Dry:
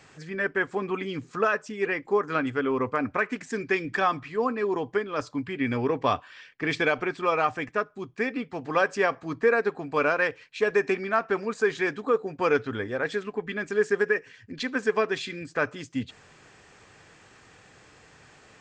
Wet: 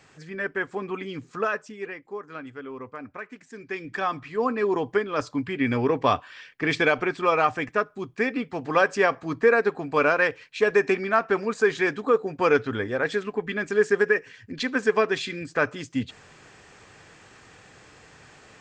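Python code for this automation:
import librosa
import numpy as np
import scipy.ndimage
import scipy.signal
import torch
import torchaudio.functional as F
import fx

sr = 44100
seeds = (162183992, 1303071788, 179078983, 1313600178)

y = fx.gain(x, sr, db=fx.line((1.58, -2.0), (2.05, -11.5), (3.53, -11.5), (3.84, -5.0), (4.59, 3.0)))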